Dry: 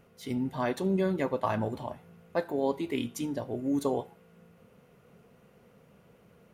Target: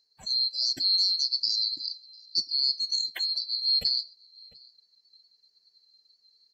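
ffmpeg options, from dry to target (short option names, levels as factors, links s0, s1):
-filter_complex "[0:a]afftfilt=real='real(if(lt(b,736),b+184*(1-2*mod(floor(b/184),2)),b),0)':imag='imag(if(lt(b,736),b+184*(1-2*mod(floor(b/184),2)),b),0)':win_size=2048:overlap=0.75,afftdn=nr=17:nf=-45,lowpass=f=3000:p=1,equalizer=f=440:w=6:g=11.5,asplit=2[s0][s1];[s1]alimiter=level_in=1.41:limit=0.0631:level=0:latency=1:release=286,volume=0.708,volume=0.708[s2];[s0][s2]amix=inputs=2:normalize=0,asplit=2[s3][s4];[s4]adelay=699.7,volume=0.112,highshelf=f=4000:g=-15.7[s5];[s3][s5]amix=inputs=2:normalize=0,volume=1.58"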